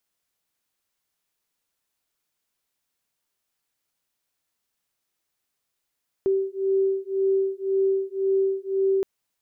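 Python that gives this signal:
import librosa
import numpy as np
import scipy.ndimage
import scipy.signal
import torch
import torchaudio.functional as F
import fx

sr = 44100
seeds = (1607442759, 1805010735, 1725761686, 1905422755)

y = fx.two_tone_beats(sr, length_s=2.77, hz=386.0, beat_hz=1.9, level_db=-23.5)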